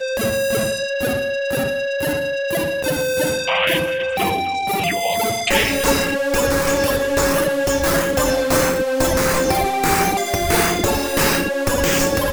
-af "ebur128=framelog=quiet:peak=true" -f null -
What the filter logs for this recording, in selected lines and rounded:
Integrated loudness:
  I:         -18.4 LUFS
  Threshold: -28.4 LUFS
Loudness range:
  LRA:         2.5 LU
  Threshold: -38.3 LUFS
  LRA low:   -19.9 LUFS
  LRA high:  -17.4 LUFS
True peak:
  Peak:       -2.7 dBFS